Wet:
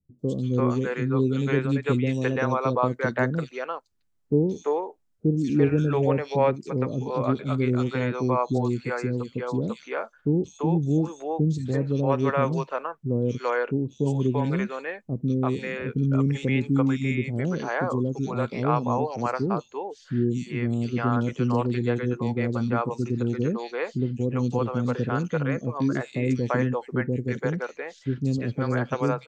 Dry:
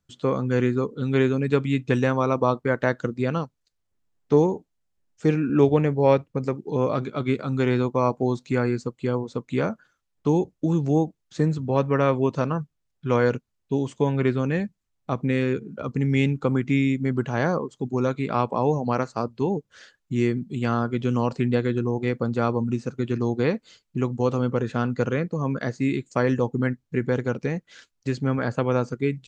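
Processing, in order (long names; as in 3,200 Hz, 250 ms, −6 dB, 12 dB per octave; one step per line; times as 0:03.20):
three-band delay without the direct sound lows, highs, mids 190/340 ms, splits 450/3,300 Hz
0:05.41–0:06.96: one half of a high-frequency compander encoder only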